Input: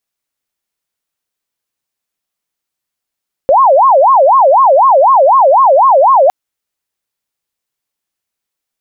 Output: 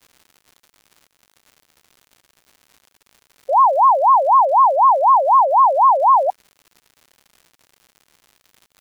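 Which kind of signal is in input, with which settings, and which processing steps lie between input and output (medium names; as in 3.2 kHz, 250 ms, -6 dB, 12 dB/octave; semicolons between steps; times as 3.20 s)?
siren wail 526–1090 Hz 4 per s sine -3.5 dBFS 2.81 s
high-pass 1.1 kHz 12 dB/octave; spectral gate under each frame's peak -15 dB strong; crackle 160 per s -37 dBFS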